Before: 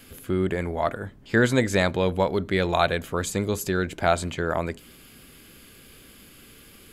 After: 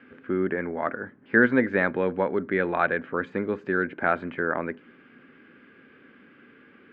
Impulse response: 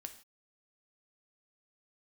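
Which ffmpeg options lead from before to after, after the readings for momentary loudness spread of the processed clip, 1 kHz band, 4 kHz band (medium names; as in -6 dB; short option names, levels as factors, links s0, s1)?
10 LU, -2.0 dB, under -15 dB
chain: -af "highpass=230,equalizer=f=250:t=q:w=4:g=5,equalizer=f=670:t=q:w=4:g=-6,equalizer=f=960:t=q:w=4:g=-3,equalizer=f=1600:t=q:w=4:g=6,lowpass=f=2100:w=0.5412,lowpass=f=2100:w=1.3066"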